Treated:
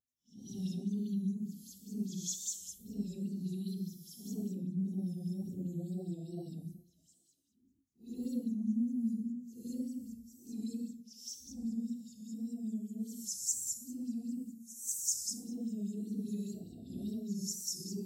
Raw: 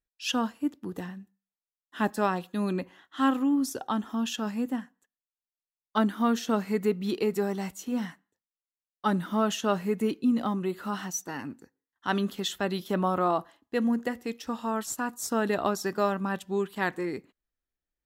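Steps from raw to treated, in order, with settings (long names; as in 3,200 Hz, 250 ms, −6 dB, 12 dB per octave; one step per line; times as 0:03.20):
elliptic band-stop filter 260–6,000 Hz, stop band 80 dB
downward compressor 2 to 1, threshold −38 dBFS, peak gain reduction 9.5 dB
extreme stretch with random phases 4.6×, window 0.10 s, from 0:11.96
tape wow and flutter 72 cents
notch comb filter 300 Hz
auto-filter bell 5 Hz 580–7,000 Hz +13 dB
level −1 dB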